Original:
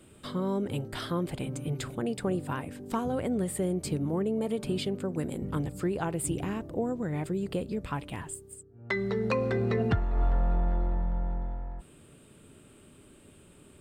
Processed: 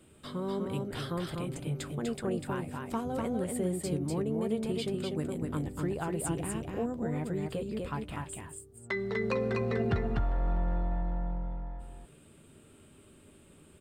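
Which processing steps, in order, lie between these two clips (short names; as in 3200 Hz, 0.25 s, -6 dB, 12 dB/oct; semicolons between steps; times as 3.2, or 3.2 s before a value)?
doubler 13 ms -12.5 dB; on a send: echo 0.247 s -3.5 dB; on the sum: gain -4 dB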